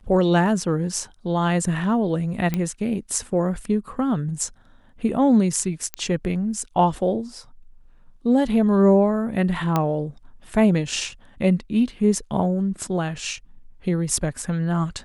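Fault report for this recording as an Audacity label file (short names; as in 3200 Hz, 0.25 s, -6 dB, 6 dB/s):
2.540000	2.540000	pop -11 dBFS
5.940000	5.940000	pop -11 dBFS
9.760000	9.760000	pop -8 dBFS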